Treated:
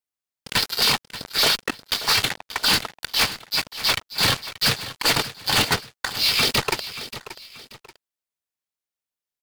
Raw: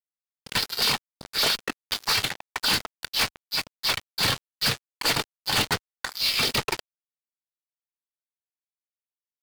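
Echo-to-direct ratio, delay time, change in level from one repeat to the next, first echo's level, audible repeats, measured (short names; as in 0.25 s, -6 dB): -13.5 dB, 0.582 s, -9.0 dB, -14.0 dB, 2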